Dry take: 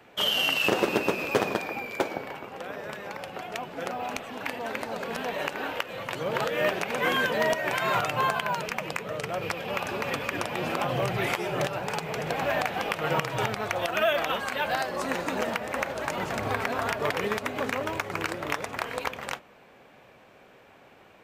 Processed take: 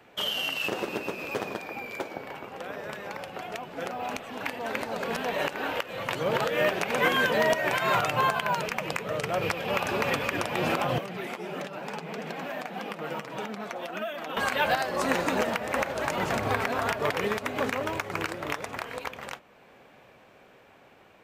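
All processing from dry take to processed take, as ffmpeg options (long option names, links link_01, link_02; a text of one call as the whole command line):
ffmpeg -i in.wav -filter_complex "[0:a]asettb=1/sr,asplit=3[link_01][link_02][link_03];[link_01]atrim=end=10.984[link_04];[link_02]atrim=start=10.98:end=14.37,asetpts=PTS-STARTPTS,afade=type=in:duration=0.004:curve=qsin,afade=type=out:start_time=3.386:duration=0.004:curve=qsin,lowshelf=frequency=140:width_type=q:width=3:gain=-12.5,acrossover=split=1300|5500[link_05][link_06][link_07];[link_05]acompressor=threshold=-37dB:ratio=4[link_08];[link_06]acompressor=threshold=-44dB:ratio=4[link_09];[link_07]acompressor=threshold=-59dB:ratio=4[link_10];[link_08][link_09][link_10]amix=inputs=3:normalize=0,flanger=delay=3.6:depth=5.3:regen=-43:speed=1.6:shape=triangular[link_11];[link_03]atrim=start=14.366[link_12];[link_04][link_11]acrossfade=duration=0.004:curve1=hsin:curve2=qsin[link_13];[link_13][link_12]acrossfade=duration=0.004:curve1=qsin:curve2=hsin,alimiter=limit=-18.5dB:level=0:latency=1:release=386,dynaudnorm=framelen=990:gausssize=9:maxgain=7dB,volume=-1.5dB" out.wav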